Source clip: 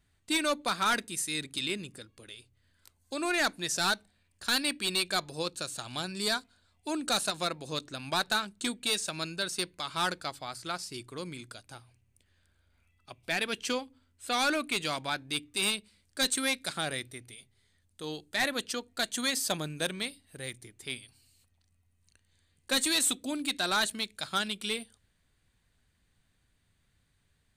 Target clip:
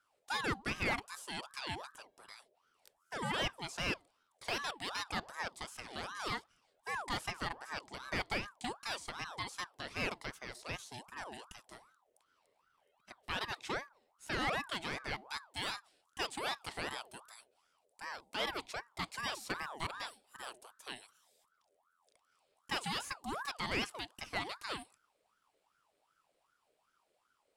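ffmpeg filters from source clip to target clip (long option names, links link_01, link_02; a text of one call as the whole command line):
ffmpeg -i in.wav -filter_complex "[0:a]acrossover=split=3200[link_01][link_02];[link_02]acompressor=threshold=-42dB:ratio=4:attack=1:release=60[link_03];[link_01][link_03]amix=inputs=2:normalize=0,aeval=exprs='val(0)*sin(2*PI*960*n/s+960*0.5/2.6*sin(2*PI*2.6*n/s))':channel_layout=same,volume=-3.5dB" out.wav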